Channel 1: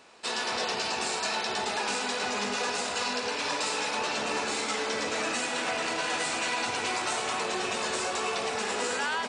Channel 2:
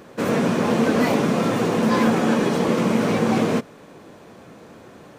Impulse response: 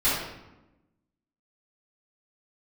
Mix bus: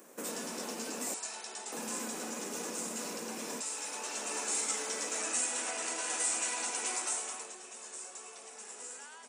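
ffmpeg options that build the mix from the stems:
-filter_complex "[0:a]volume=0.335,afade=t=in:st=3.68:d=0.75:silence=0.473151,afade=t=out:st=6.92:d=0.65:silence=0.237137[s0];[1:a]acompressor=threshold=0.0501:ratio=6,volume=0.224,asplit=3[s1][s2][s3];[s1]atrim=end=1.14,asetpts=PTS-STARTPTS,afade=t=out:st=1.136:d=0.004:c=hsin[s4];[s2]atrim=start=1.14:end=1.72,asetpts=PTS-STARTPTS,volume=0[s5];[s3]atrim=start=1.72,asetpts=PTS-STARTPTS,afade=t=in:d=0.004:c=hsin[s6];[s4][s5][s6]concat=n=3:v=0:a=1[s7];[s0][s7]amix=inputs=2:normalize=0,aexciter=amount=7.6:drive=4.3:freq=6100,highpass=f=220:w=0.5412,highpass=f=220:w=1.3066"

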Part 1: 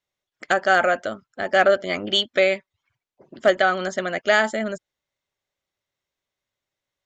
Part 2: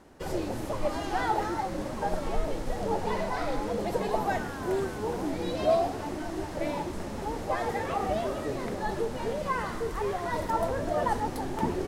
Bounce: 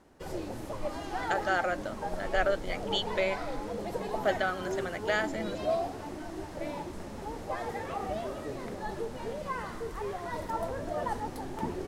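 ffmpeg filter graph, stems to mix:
-filter_complex "[0:a]adelay=800,volume=0.266[s0];[1:a]volume=0.531[s1];[s0][s1]amix=inputs=2:normalize=0"

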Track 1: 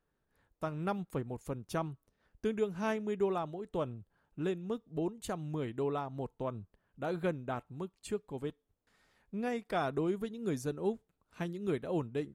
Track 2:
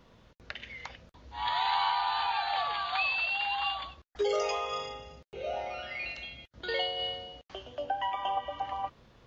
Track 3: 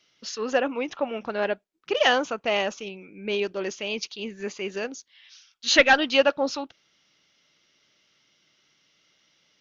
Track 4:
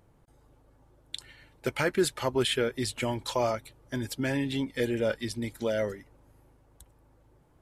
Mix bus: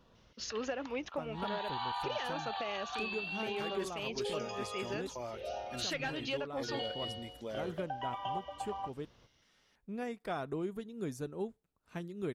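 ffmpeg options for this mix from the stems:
-filter_complex "[0:a]adelay=550,volume=0.631,asplit=3[s0][s1][s2];[s0]atrim=end=5.07,asetpts=PTS-STARTPTS,afade=t=out:st=5.066:d=0.004:c=hsin[s3];[s1]atrim=start=5.07:end=5.71,asetpts=PTS-STARTPTS,volume=0[s4];[s2]atrim=start=5.71,asetpts=PTS-STARTPTS,afade=t=in:d=0.004:c=hsin[s5];[s3][s4][s5]concat=n=3:v=0:a=1[s6];[1:a]bandreject=f=2100:w=5.3,volume=0.531[s7];[2:a]alimiter=limit=0.178:level=0:latency=1:release=257,acontrast=69,adelay=150,volume=0.211[s8];[3:a]adelay=1800,volume=0.224[s9];[s6][s7][s8][s9]amix=inputs=4:normalize=0,alimiter=level_in=1.33:limit=0.0631:level=0:latency=1:release=487,volume=0.75"

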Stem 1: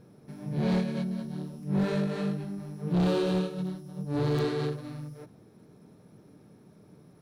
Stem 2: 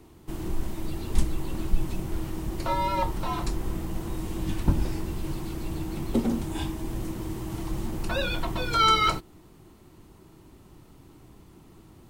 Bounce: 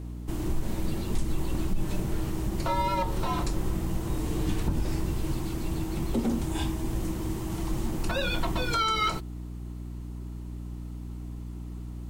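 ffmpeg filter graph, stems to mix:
-filter_complex "[0:a]alimiter=level_in=2.37:limit=0.0631:level=0:latency=1,volume=0.422,volume=0.75[s0];[1:a]equalizer=f=7100:w=1.5:g=2.5,aeval=exprs='val(0)+0.0141*(sin(2*PI*60*n/s)+sin(2*PI*2*60*n/s)/2+sin(2*PI*3*60*n/s)/3+sin(2*PI*4*60*n/s)/4+sin(2*PI*5*60*n/s)/5)':c=same,volume=1.12[s1];[s0][s1]amix=inputs=2:normalize=0,alimiter=limit=0.133:level=0:latency=1:release=102"

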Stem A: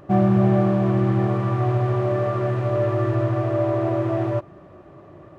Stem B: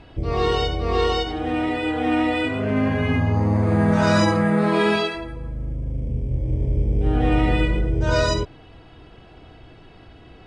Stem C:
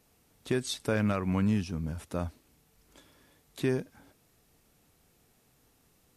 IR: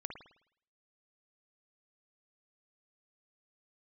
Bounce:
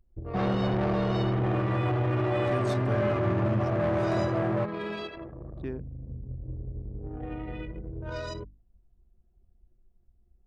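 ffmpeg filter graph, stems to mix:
-filter_complex "[0:a]volume=5.62,asoftclip=hard,volume=0.178,highpass=47,asoftclip=type=tanh:threshold=0.0708,adelay=250,volume=0.944[s0];[1:a]acompressor=threshold=0.0501:ratio=3,adynamicequalizer=threshold=0.00316:dfrequency=790:dqfactor=5.8:tfrequency=790:tqfactor=5.8:attack=5:release=100:ratio=0.375:range=3:mode=cutabove:tftype=bell,volume=0.422[s1];[2:a]lowshelf=f=220:g=8,adelay=2000,volume=0.335[s2];[s0][s1][s2]amix=inputs=3:normalize=0,anlmdn=1,bandreject=f=50:t=h:w=6,bandreject=f=100:t=h:w=6,bandreject=f=150:t=h:w=6,bandreject=f=200:t=h:w=6,bandreject=f=250:t=h:w=6,bandreject=f=300:t=h:w=6"

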